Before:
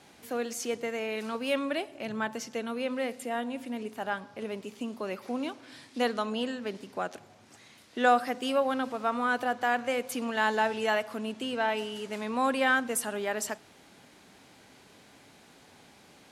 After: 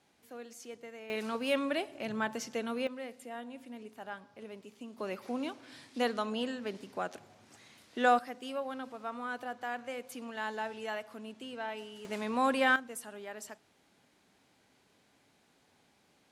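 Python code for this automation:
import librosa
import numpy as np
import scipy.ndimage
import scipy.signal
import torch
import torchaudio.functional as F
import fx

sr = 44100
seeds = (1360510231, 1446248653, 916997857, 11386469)

y = fx.gain(x, sr, db=fx.steps((0.0, -14.0), (1.1, -1.5), (2.87, -10.5), (4.98, -3.0), (8.19, -10.5), (12.05, -1.5), (12.76, -12.5)))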